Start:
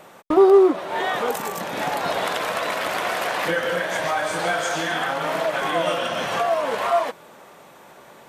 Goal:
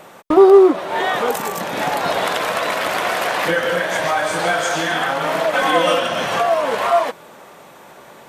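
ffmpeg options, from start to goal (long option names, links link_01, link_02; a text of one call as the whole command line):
ffmpeg -i in.wav -filter_complex "[0:a]asettb=1/sr,asplit=3[link_01][link_02][link_03];[link_01]atrim=end=5.534[link_04];[link_02]atrim=start=5.53:end=6,asetpts=PTS-STARTPTS,afade=type=in:duration=0.004:curve=qsin,afade=type=out:start_time=0.466:duration=0.004:curve=qsin,aecho=1:1:3.9:0.89,atrim=end_sample=20727[link_05];[link_03]atrim=start=5.996[link_06];[link_04][link_05]acrossfade=duration=0.004:curve1=hsin:curve2=qsin[link_07];[link_07][link_06]acrossfade=duration=0.004:curve1=qsin:curve2=hsin,volume=4.5dB" out.wav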